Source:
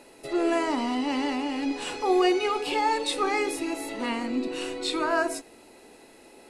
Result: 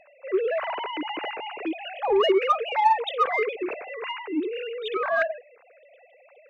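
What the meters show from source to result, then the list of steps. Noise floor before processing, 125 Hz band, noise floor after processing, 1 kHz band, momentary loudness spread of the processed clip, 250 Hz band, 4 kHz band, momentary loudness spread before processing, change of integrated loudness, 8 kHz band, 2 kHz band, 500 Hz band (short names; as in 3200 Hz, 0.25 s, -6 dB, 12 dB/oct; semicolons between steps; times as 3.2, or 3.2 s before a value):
-53 dBFS, n/a, -56 dBFS, +3.0 dB, 11 LU, -5.5 dB, -1.0 dB, 8 LU, +1.0 dB, under -20 dB, +2.0 dB, +2.5 dB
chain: sine-wave speech; in parallel at -4.5 dB: soft clip -21.5 dBFS, distortion -10 dB; on the sum: gain -2 dB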